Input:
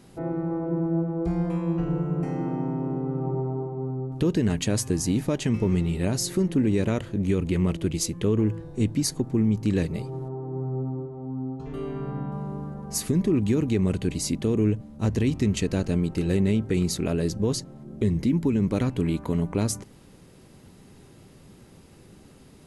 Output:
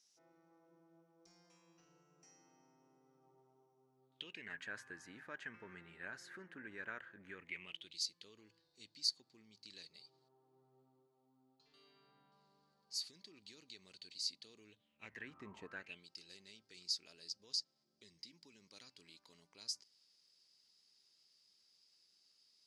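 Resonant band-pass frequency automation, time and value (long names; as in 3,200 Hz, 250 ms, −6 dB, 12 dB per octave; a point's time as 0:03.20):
resonant band-pass, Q 8
0:03.91 5,700 Hz
0:04.58 1,600 Hz
0:07.32 1,600 Hz
0:08.00 4,500 Hz
0:14.66 4,500 Hz
0:15.59 870 Hz
0:16.08 4,900 Hz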